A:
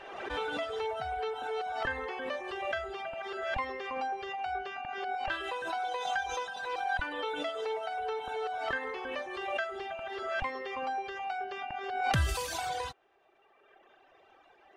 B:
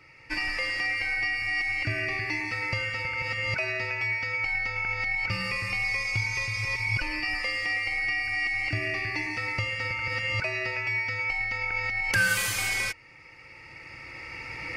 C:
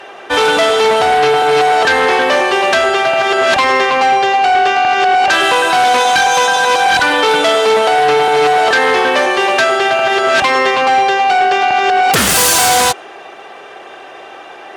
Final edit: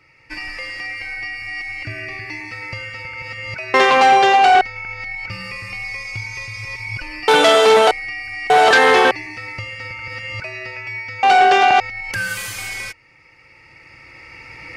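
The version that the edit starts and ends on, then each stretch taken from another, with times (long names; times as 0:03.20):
B
0:03.74–0:04.61: punch in from C
0:07.28–0:07.91: punch in from C
0:08.50–0:09.11: punch in from C
0:11.23–0:11.80: punch in from C
not used: A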